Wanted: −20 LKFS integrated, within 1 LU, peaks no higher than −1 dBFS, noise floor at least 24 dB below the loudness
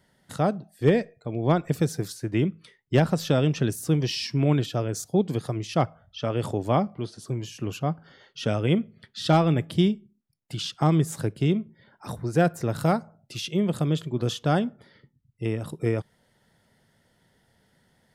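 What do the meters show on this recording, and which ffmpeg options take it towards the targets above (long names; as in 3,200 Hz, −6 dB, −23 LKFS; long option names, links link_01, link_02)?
integrated loudness −26.0 LKFS; sample peak −8.5 dBFS; target loudness −20.0 LKFS
→ -af "volume=6dB"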